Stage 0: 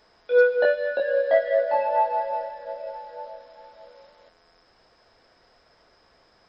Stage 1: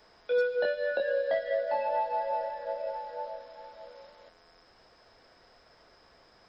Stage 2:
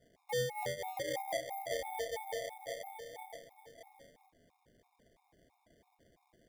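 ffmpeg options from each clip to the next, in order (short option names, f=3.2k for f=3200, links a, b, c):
-filter_complex "[0:a]acrossover=split=250|3000[a][b][c];[b]acompressor=threshold=-27dB:ratio=6[d];[a][d][c]amix=inputs=3:normalize=0"
-af "acrusher=samples=33:mix=1:aa=0.000001,afftfilt=real='re*gt(sin(2*PI*3*pts/sr)*(1-2*mod(floor(b*sr/1024/710),2)),0)':imag='im*gt(sin(2*PI*3*pts/sr)*(1-2*mod(floor(b*sr/1024/710),2)),0)':win_size=1024:overlap=0.75,volume=-6.5dB"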